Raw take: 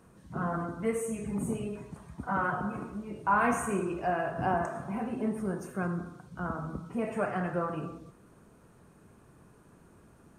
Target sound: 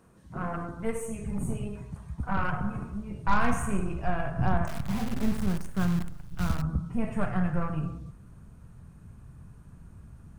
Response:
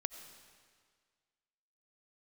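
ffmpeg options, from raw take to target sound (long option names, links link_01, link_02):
-filter_complex "[0:a]aeval=exprs='0.168*(cos(1*acos(clip(val(0)/0.168,-1,1)))-cos(1*PI/2))+0.015*(cos(2*acos(clip(val(0)/0.168,-1,1)))-cos(2*PI/2))+0.00668*(cos(3*acos(clip(val(0)/0.168,-1,1)))-cos(3*PI/2))+0.0106*(cos(6*acos(clip(val(0)/0.168,-1,1)))-cos(6*PI/2))+0.00237*(cos(8*acos(clip(val(0)/0.168,-1,1)))-cos(8*PI/2))':channel_layout=same,asettb=1/sr,asplit=3[link_01][link_02][link_03];[link_01]atrim=end=4.674[link_04];[link_02]atrim=start=4.67:end=6.62,asetpts=PTS-STARTPTS,afade=type=in:duration=0.004:curve=qsin,afade=type=out:start_time=1.946:duration=0.004:curve=qsin,acrusher=bits=7:dc=4:mix=0:aa=0.000001[link_05];[link_03]atrim=start=6.616[link_06];[link_04][link_05]acrossfade=duration=0.004:curve1=hsin:curve2=qsin[link_07];[link_07][link_06]acrossfade=duration=0.004:curve1=qsin:curve2=hsin,asubboost=boost=10:cutoff=120"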